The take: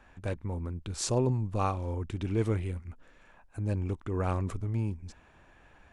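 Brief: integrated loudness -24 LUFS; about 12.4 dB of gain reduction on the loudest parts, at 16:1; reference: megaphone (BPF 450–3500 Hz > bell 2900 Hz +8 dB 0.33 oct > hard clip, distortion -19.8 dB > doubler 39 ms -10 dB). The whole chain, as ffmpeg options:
-filter_complex "[0:a]acompressor=threshold=-35dB:ratio=16,highpass=450,lowpass=3.5k,equalizer=f=2.9k:t=o:w=0.33:g=8,asoftclip=type=hard:threshold=-33dB,asplit=2[a][b];[b]adelay=39,volume=-10dB[c];[a][c]amix=inputs=2:normalize=0,volume=25.5dB"

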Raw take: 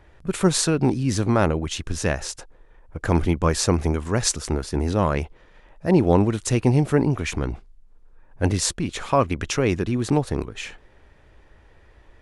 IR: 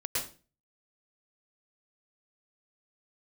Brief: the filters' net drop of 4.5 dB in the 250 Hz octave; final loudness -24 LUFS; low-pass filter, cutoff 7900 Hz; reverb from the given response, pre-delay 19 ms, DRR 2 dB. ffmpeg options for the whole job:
-filter_complex "[0:a]lowpass=7.9k,equalizer=f=250:t=o:g=-6.5,asplit=2[a][b];[1:a]atrim=start_sample=2205,adelay=19[c];[b][c]afir=irnorm=-1:irlink=0,volume=-7.5dB[d];[a][d]amix=inputs=2:normalize=0,volume=-1.5dB"

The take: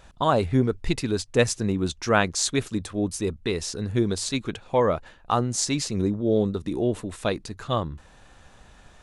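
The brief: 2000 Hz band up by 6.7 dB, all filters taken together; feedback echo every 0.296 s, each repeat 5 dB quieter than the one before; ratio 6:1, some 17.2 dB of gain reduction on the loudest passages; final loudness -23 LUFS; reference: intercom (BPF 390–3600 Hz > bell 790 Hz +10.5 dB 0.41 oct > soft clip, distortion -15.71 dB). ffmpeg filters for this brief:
-af "equalizer=f=2k:t=o:g=9,acompressor=threshold=-31dB:ratio=6,highpass=390,lowpass=3.6k,equalizer=f=790:t=o:w=0.41:g=10.5,aecho=1:1:296|592|888|1184|1480|1776|2072:0.562|0.315|0.176|0.0988|0.0553|0.031|0.0173,asoftclip=threshold=-22.5dB,volume=14dB"

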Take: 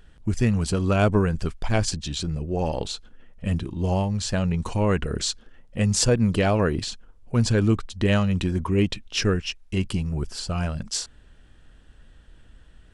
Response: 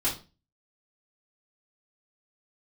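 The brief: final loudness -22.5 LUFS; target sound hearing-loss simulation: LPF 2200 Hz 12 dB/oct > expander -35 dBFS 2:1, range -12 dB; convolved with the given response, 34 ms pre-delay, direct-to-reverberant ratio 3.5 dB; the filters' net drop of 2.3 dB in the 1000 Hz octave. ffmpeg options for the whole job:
-filter_complex "[0:a]equalizer=f=1k:t=o:g=-3,asplit=2[a][b];[1:a]atrim=start_sample=2205,adelay=34[c];[b][c]afir=irnorm=-1:irlink=0,volume=-12dB[d];[a][d]amix=inputs=2:normalize=0,lowpass=2.2k,agate=range=-12dB:threshold=-35dB:ratio=2"

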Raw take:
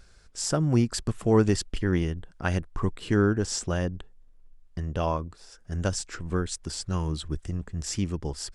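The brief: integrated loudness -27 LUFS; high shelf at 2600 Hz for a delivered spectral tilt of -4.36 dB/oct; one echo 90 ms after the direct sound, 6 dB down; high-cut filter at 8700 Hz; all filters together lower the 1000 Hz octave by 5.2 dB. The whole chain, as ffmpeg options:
-af "lowpass=8.7k,equalizer=f=1k:t=o:g=-8.5,highshelf=f=2.6k:g=8.5,aecho=1:1:90:0.501,volume=-0.5dB"

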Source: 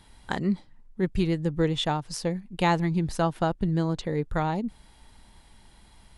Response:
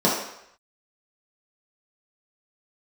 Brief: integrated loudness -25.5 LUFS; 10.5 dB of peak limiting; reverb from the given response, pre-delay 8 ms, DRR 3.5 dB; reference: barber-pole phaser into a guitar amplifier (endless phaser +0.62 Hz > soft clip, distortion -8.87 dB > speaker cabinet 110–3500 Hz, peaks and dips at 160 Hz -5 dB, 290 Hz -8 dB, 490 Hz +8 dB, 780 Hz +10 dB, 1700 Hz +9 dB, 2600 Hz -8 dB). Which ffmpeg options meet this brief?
-filter_complex "[0:a]alimiter=limit=-21.5dB:level=0:latency=1,asplit=2[a][b];[1:a]atrim=start_sample=2205,adelay=8[c];[b][c]afir=irnorm=-1:irlink=0,volume=-21.5dB[d];[a][d]amix=inputs=2:normalize=0,asplit=2[e][f];[f]afreqshift=0.62[g];[e][g]amix=inputs=2:normalize=1,asoftclip=threshold=-29.5dB,highpass=110,equalizer=f=160:t=q:w=4:g=-5,equalizer=f=290:t=q:w=4:g=-8,equalizer=f=490:t=q:w=4:g=8,equalizer=f=780:t=q:w=4:g=10,equalizer=f=1.7k:t=q:w=4:g=9,equalizer=f=2.6k:t=q:w=4:g=-8,lowpass=f=3.5k:w=0.5412,lowpass=f=3.5k:w=1.3066,volume=8.5dB"

